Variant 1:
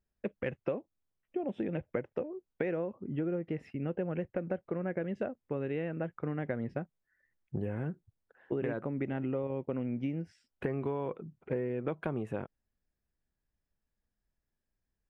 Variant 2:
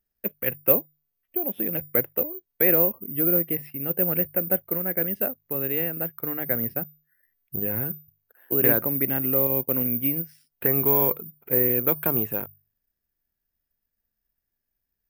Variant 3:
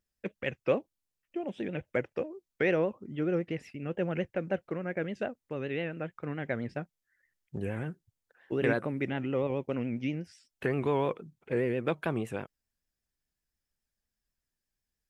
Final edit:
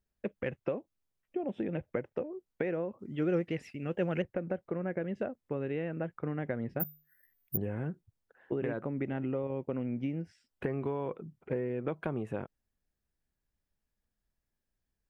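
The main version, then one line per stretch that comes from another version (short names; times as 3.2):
1
2.99–4.22 from 3
6.8–7.57 from 2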